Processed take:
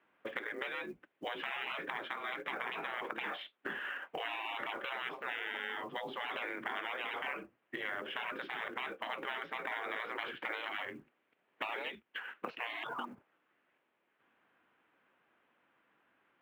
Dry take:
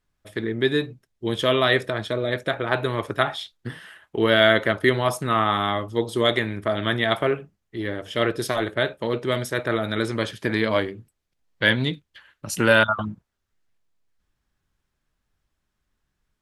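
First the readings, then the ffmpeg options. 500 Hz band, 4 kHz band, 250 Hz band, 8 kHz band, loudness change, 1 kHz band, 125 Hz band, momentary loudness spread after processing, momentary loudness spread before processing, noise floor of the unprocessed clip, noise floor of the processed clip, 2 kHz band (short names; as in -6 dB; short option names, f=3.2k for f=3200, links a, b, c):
-22.5 dB, -17.0 dB, -24.0 dB, under -25 dB, -17.0 dB, -13.5 dB, -35.5 dB, 5 LU, 14 LU, -78 dBFS, -79 dBFS, -13.5 dB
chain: -af "afftfilt=real='re*lt(hypot(re,im),0.0891)':imag='im*lt(hypot(re,im),0.0891)':win_size=1024:overlap=0.75,acompressor=threshold=-48dB:ratio=4,highpass=f=340:t=q:w=0.5412,highpass=f=340:t=q:w=1.307,lowpass=f=2.9k:t=q:w=0.5176,lowpass=f=2.9k:t=q:w=0.7071,lowpass=f=2.9k:t=q:w=1.932,afreqshift=-80,acrusher=bits=8:mode=log:mix=0:aa=0.000001,volume=11dB"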